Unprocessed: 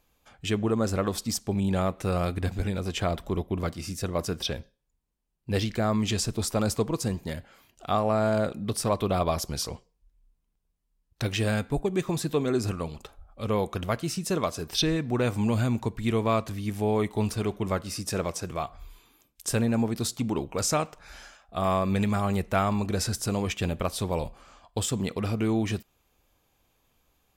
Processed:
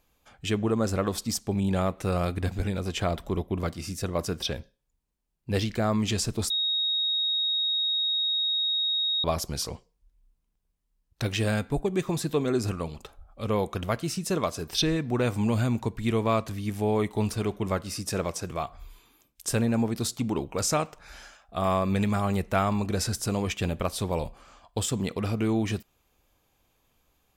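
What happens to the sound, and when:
6.50–9.24 s: bleep 3.76 kHz -23.5 dBFS

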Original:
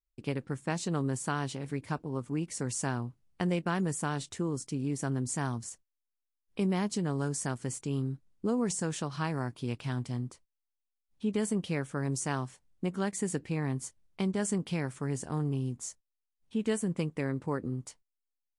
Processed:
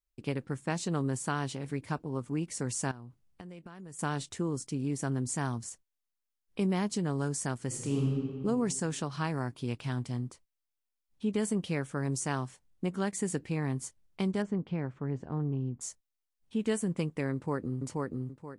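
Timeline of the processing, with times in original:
2.91–3.99 s: compression 10:1, threshold -43 dBFS
7.67–8.10 s: reverb throw, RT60 2 s, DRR -1.5 dB
14.42–15.81 s: tape spacing loss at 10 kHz 39 dB
17.33–17.85 s: echo throw 480 ms, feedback 30%, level -1.5 dB

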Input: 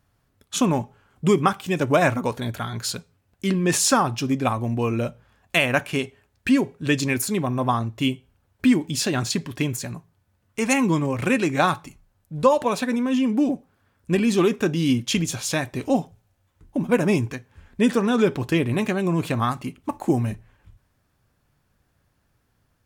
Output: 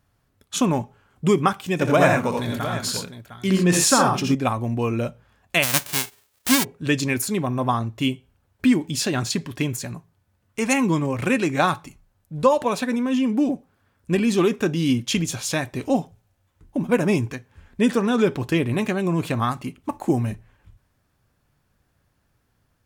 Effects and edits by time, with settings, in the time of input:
1.73–4.35 s: multi-tap echo 63/84/113/707 ms -7.5/-3.5/-11/-12.5 dB
5.62–6.63 s: formants flattened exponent 0.1

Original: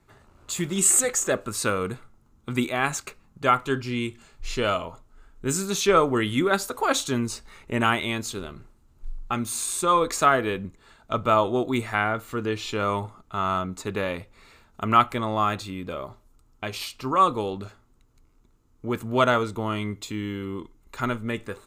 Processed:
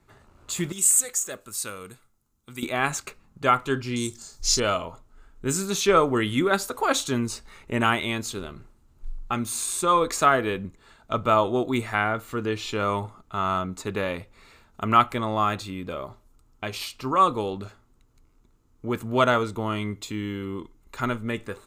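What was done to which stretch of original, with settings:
0.72–2.63 s: pre-emphasis filter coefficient 0.8
3.96–4.60 s: resonant high shelf 3.8 kHz +13 dB, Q 3

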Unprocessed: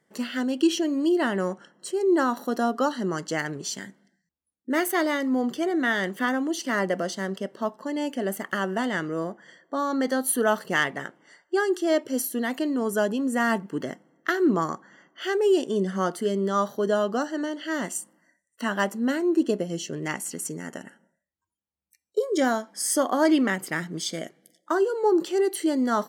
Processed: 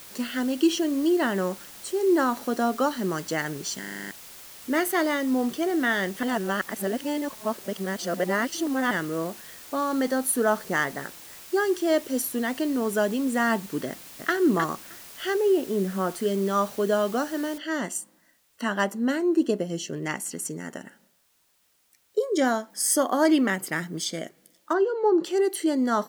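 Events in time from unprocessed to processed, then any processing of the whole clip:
3.79 s: stutter in place 0.04 s, 8 plays
6.23–8.91 s: reverse
10.11–11.60 s: peaking EQ 2.9 kHz -9.5 dB 0.73 oct
13.88–14.33 s: echo throw 310 ms, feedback 10%, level -5.5 dB
15.36–16.11 s: distance through air 430 m
17.58 s: noise floor step -45 dB -67 dB
22.70–24.05 s: treble shelf 11 kHz +7.5 dB
24.73–25.24 s: Gaussian low-pass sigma 1.8 samples

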